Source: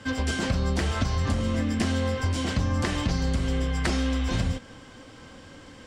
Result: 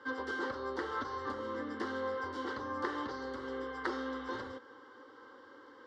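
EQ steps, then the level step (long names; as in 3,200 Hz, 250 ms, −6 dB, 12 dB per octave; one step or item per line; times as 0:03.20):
high-pass filter 410 Hz 12 dB per octave
high-frequency loss of the air 320 metres
phaser with its sweep stopped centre 670 Hz, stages 6
0.0 dB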